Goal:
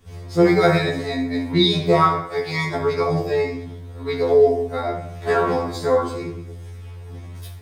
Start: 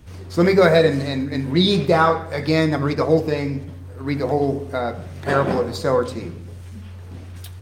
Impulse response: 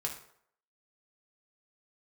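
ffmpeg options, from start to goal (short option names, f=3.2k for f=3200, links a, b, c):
-filter_complex "[0:a]asettb=1/sr,asplit=3[a][b][c];[a]atrim=end=2.214[d];[b]atrim=start=2.21:end=2.76,asetpts=PTS-STARTPTS,afade=t=in:d=0.004:c=qsin,afade=t=out:st=0.546:d=0.004:c=qsin,highpass=f=270:p=1[e];[c]atrim=start=2.756[f];[d][e]acrossfade=d=0.004:c1=hsin:c2=qsin[g];[g][f]acrossfade=d=0.004:c1=qsin:c2=hsin,asettb=1/sr,asplit=3[h][i][j];[h]atrim=end=3.514[k];[i]atrim=start=3.51:end=4.35,asetpts=PTS-STARTPTS,afade=t=in:d=0.004:c=qsin,afade=t=out:st=0.836:d=0.004:c=qsin,equalizer=f=3.7k:t=o:w=0.44:g=7[l];[j]atrim=start=4.346[m];[k][l]acrossfade=d=0.004:c1=hsin:c2=qsin[n];[n][m]acrossfade=d=0.004:c1=qsin:c2=hsin[o];[1:a]atrim=start_sample=2205[p];[o][p]afir=irnorm=-1:irlink=0,afftfilt=real='re*2*eq(mod(b,4),0)':imag='im*2*eq(mod(b,4),0)':win_size=2048:overlap=0.75"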